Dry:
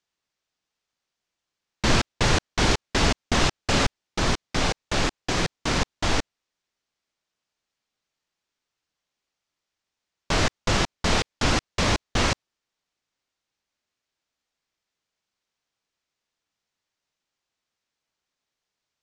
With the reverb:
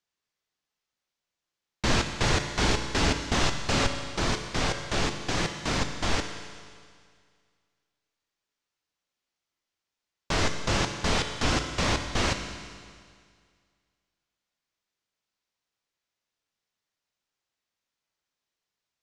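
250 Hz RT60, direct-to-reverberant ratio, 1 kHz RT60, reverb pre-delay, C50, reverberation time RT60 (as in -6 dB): 1.9 s, 5.5 dB, 2.0 s, 7 ms, 7.0 dB, 2.0 s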